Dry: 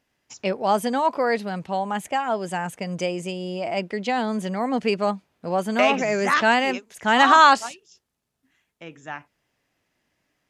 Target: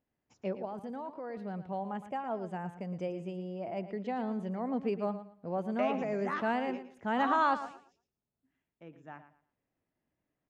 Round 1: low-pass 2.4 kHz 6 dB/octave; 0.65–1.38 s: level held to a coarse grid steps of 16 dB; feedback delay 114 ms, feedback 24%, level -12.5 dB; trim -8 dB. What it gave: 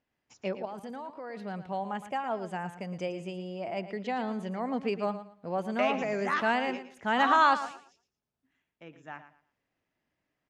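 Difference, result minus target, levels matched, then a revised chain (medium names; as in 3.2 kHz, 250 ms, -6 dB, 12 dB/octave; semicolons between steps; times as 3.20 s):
2 kHz band +4.0 dB
low-pass 600 Hz 6 dB/octave; 0.65–1.38 s: level held to a coarse grid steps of 16 dB; feedback delay 114 ms, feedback 24%, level -12.5 dB; trim -8 dB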